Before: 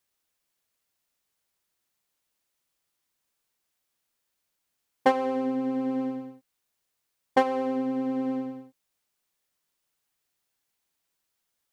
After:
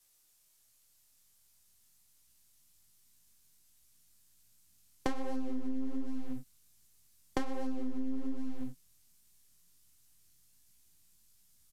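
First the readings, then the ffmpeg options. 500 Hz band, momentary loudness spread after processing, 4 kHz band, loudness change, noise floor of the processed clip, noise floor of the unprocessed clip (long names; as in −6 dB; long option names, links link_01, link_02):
−15.5 dB, 7 LU, −8.0 dB, −11.5 dB, −69 dBFS, −80 dBFS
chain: -filter_complex "[0:a]aeval=exprs='if(lt(val(0),0),0.447*val(0),val(0))':channel_layout=same,asubboost=boost=6.5:cutoff=210,flanger=delay=16:depth=7.4:speed=1.3,acrossover=split=130[link_01][link_02];[link_02]acompressor=threshold=-40dB:ratio=10[link_03];[link_01][link_03]amix=inputs=2:normalize=0,acrossover=split=280[link_04][link_05];[link_04]asoftclip=type=hard:threshold=-39.5dB[link_06];[link_06][link_05]amix=inputs=2:normalize=0,bass=frequency=250:gain=2,treble=frequency=4000:gain=12,aresample=32000,aresample=44100,volume=8dB"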